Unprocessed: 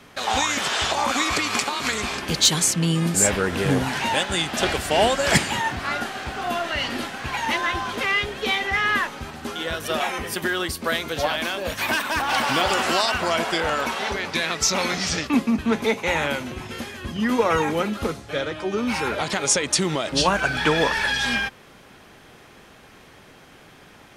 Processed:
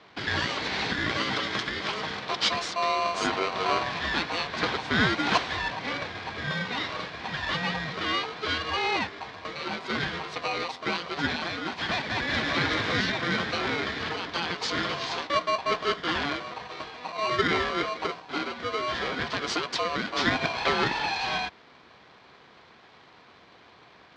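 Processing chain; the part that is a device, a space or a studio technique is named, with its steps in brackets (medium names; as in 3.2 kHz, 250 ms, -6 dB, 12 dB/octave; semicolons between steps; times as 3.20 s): ring modulator pedal into a guitar cabinet (polarity switched at an audio rate 860 Hz; cabinet simulation 90–4300 Hz, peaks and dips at 590 Hz -5 dB, 1.3 kHz -3 dB, 2.7 kHz -6 dB); trim -3 dB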